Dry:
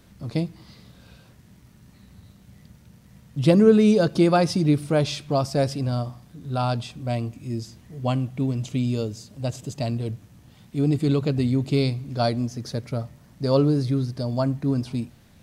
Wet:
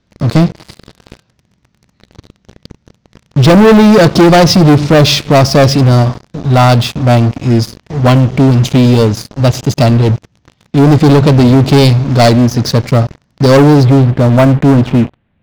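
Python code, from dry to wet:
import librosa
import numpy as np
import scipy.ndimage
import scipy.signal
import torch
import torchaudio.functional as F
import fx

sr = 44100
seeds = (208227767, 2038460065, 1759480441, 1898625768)

y = fx.steep_lowpass(x, sr, hz=fx.steps((0.0, 6400.0), (13.83, 3100.0)), slope=36)
y = fx.leveller(y, sr, passes=5)
y = y * 10.0 ** (3.5 / 20.0)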